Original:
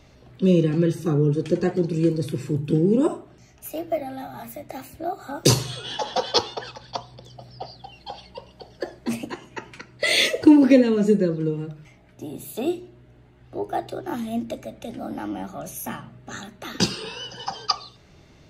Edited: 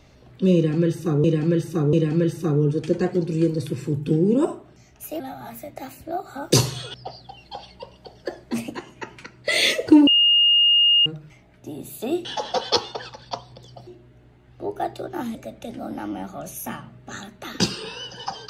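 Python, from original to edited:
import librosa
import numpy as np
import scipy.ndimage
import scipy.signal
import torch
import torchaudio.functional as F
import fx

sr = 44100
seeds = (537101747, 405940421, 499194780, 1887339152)

y = fx.edit(x, sr, fx.repeat(start_s=0.55, length_s=0.69, count=3),
    fx.cut(start_s=3.82, length_s=0.31),
    fx.move(start_s=5.87, length_s=1.62, to_s=12.8),
    fx.bleep(start_s=10.62, length_s=0.99, hz=2840.0, db=-13.0),
    fx.cut(start_s=14.28, length_s=0.27), tone=tone)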